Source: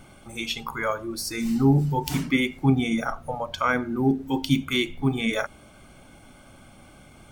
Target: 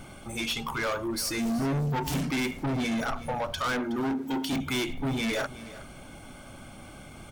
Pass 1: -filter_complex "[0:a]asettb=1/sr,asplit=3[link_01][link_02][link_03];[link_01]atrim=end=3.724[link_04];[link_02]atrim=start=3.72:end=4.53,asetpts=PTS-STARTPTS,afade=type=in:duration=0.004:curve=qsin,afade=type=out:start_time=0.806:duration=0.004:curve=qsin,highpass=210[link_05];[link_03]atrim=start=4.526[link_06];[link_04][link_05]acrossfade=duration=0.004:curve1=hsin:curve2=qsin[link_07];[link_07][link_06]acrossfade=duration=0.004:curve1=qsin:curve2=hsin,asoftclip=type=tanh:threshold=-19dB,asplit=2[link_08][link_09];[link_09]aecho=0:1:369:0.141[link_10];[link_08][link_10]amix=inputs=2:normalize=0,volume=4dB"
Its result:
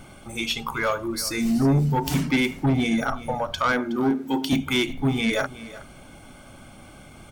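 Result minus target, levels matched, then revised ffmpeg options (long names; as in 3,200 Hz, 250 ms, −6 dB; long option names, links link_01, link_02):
soft clipping: distortion −7 dB
-filter_complex "[0:a]asettb=1/sr,asplit=3[link_01][link_02][link_03];[link_01]atrim=end=3.724[link_04];[link_02]atrim=start=3.72:end=4.53,asetpts=PTS-STARTPTS,afade=type=in:duration=0.004:curve=qsin,afade=type=out:start_time=0.806:duration=0.004:curve=qsin,highpass=210[link_05];[link_03]atrim=start=4.526[link_06];[link_04][link_05]acrossfade=duration=0.004:curve1=hsin:curve2=qsin[link_07];[link_07][link_06]acrossfade=duration=0.004:curve1=qsin:curve2=hsin,asoftclip=type=tanh:threshold=-30dB,asplit=2[link_08][link_09];[link_09]aecho=0:1:369:0.141[link_10];[link_08][link_10]amix=inputs=2:normalize=0,volume=4dB"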